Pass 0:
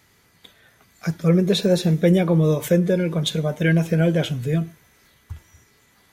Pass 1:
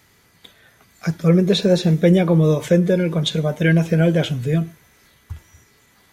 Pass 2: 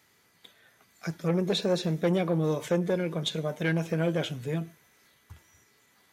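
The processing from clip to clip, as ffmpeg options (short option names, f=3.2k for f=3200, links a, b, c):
-filter_complex "[0:a]acrossover=split=7800[a][b];[b]acompressor=threshold=-51dB:ratio=4:attack=1:release=60[c];[a][c]amix=inputs=2:normalize=0,volume=2.5dB"
-af "aeval=exprs='(tanh(3.16*val(0)+0.4)-tanh(0.4))/3.16':c=same,highpass=f=220:p=1,volume=-6.5dB"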